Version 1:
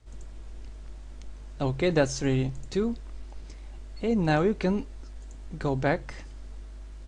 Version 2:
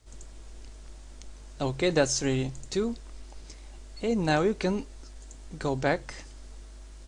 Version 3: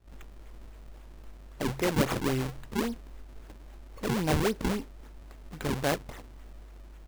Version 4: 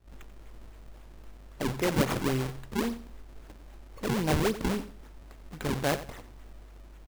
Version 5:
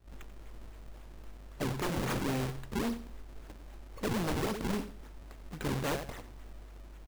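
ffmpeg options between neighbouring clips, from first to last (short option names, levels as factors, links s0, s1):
-af "bass=f=250:g=-4,treble=f=4000:g=8"
-af "acrusher=samples=41:mix=1:aa=0.000001:lfo=1:lforange=65.6:lforate=3.7,volume=0.794"
-af "aecho=1:1:90|180|270:0.2|0.0479|0.0115"
-af "aeval=exprs='0.0447*(abs(mod(val(0)/0.0447+3,4)-2)-1)':c=same"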